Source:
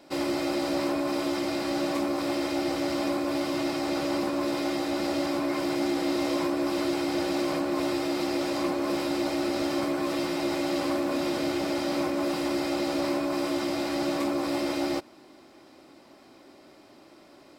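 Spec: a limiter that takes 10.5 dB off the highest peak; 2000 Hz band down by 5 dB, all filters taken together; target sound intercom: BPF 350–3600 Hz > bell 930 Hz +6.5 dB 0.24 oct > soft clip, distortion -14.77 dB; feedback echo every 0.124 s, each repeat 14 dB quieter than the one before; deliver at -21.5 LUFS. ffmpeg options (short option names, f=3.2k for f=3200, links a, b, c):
-af "equalizer=f=2k:t=o:g=-6,alimiter=level_in=3dB:limit=-24dB:level=0:latency=1,volume=-3dB,highpass=350,lowpass=3.6k,equalizer=f=930:t=o:w=0.24:g=6.5,aecho=1:1:124|248:0.2|0.0399,asoftclip=threshold=-34.5dB,volume=18.5dB"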